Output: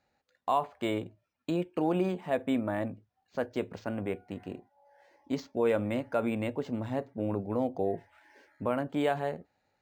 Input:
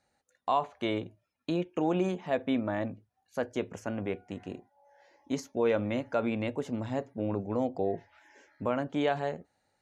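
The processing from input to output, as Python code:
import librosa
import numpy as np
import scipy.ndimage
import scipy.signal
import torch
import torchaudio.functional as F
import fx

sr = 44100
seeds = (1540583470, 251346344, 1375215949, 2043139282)

y = np.interp(np.arange(len(x)), np.arange(len(x))[::4], x[::4])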